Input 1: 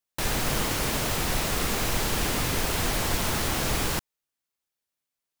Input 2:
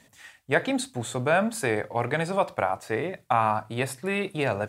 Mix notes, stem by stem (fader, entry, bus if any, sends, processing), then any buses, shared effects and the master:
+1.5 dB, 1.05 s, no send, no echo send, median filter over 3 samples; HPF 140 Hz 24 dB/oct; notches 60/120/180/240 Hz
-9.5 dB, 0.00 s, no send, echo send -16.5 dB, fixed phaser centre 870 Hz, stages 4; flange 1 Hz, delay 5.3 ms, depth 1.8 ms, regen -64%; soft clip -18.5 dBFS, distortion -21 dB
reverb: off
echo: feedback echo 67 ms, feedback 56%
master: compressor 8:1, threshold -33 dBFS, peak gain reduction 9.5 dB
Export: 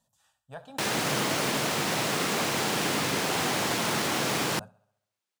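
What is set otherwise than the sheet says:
stem 1: entry 1.05 s -> 0.60 s; master: missing compressor 8:1, threshold -33 dBFS, peak gain reduction 9.5 dB

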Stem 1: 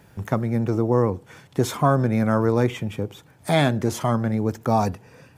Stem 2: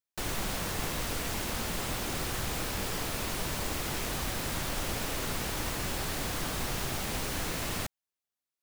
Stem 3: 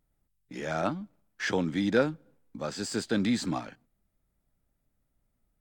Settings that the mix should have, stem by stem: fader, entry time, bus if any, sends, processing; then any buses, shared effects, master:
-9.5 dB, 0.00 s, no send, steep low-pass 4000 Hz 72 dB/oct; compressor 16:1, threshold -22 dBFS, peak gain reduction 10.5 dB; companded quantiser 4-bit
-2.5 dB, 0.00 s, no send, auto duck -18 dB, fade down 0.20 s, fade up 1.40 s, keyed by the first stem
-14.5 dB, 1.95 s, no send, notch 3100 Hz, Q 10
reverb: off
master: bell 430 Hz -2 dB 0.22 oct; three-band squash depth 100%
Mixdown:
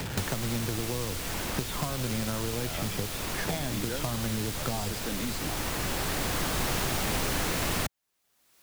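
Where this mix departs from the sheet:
stem 2 -2.5 dB -> +9.5 dB; master: missing bell 430 Hz -2 dB 0.22 oct

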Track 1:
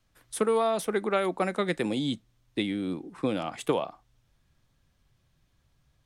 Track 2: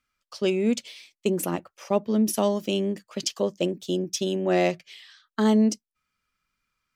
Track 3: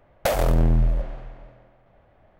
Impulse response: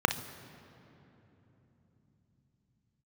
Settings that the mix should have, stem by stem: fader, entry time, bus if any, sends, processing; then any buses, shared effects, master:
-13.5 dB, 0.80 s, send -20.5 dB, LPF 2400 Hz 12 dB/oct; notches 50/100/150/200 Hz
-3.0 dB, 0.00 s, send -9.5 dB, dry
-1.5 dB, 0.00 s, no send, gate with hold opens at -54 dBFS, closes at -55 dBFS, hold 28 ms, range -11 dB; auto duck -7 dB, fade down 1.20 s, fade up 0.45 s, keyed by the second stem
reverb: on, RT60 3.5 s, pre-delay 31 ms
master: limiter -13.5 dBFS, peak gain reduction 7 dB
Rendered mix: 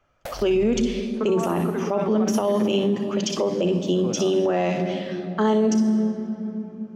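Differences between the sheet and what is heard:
stem 1 -13.5 dB -> -6.5 dB; stem 3 -1.5 dB -> -11.0 dB; reverb return +9.0 dB

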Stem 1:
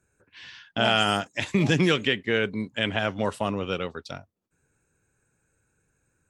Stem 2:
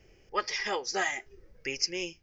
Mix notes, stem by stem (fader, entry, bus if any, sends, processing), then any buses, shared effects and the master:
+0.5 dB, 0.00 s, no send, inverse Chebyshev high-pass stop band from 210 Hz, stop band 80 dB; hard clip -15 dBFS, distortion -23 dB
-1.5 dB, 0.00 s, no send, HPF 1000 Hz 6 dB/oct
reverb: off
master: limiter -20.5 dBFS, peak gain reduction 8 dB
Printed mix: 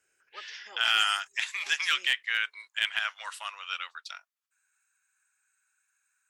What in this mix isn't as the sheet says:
stem 2 -1.5 dB -> -13.5 dB; master: missing limiter -20.5 dBFS, peak gain reduction 8 dB

